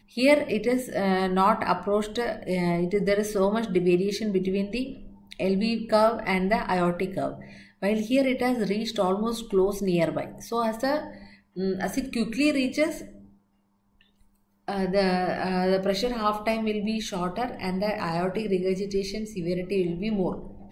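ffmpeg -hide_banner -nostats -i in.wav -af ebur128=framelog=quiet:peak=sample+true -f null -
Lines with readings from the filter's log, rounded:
Integrated loudness:
  I:         -26.0 LUFS
  Threshold: -36.5 LUFS
Loudness range:
  LRA:         3.8 LU
  Threshold: -46.7 LUFS
  LRA low:   -28.7 LUFS
  LRA high:  -24.8 LUFS
Sample peak:
  Peak:       -8.3 dBFS
True peak:
  Peak:       -8.3 dBFS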